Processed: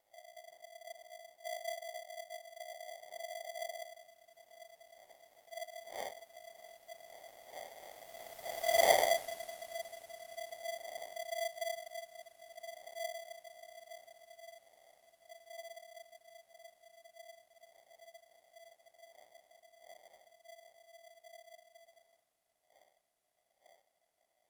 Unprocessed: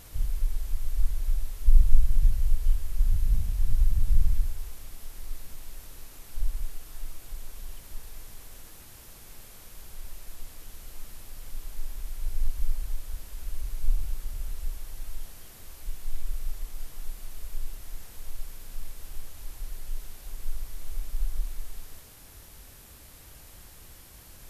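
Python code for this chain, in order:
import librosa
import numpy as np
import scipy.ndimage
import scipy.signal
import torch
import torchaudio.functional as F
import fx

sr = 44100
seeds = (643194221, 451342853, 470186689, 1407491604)

y = fx.dmg_wind(x, sr, seeds[0], corner_hz=100.0, level_db=-38.0)
y = fx.doppler_pass(y, sr, speed_mps=45, closest_m=4.9, pass_at_s=8.84)
y = y * np.sign(np.sin(2.0 * np.pi * 670.0 * np.arange(len(y)) / sr))
y = F.gain(torch.from_numpy(y), 7.5).numpy()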